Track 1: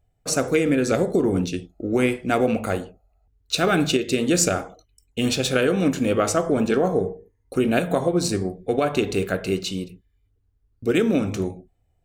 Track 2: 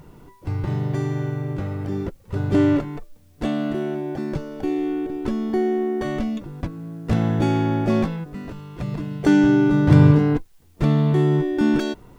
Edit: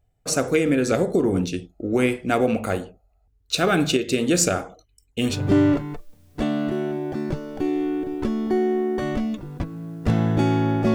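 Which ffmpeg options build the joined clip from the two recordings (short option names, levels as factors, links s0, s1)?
-filter_complex "[0:a]apad=whole_dur=10.94,atrim=end=10.94,atrim=end=5.44,asetpts=PTS-STARTPTS[s0];[1:a]atrim=start=2.27:end=7.97,asetpts=PTS-STARTPTS[s1];[s0][s1]acrossfade=d=0.2:c1=tri:c2=tri"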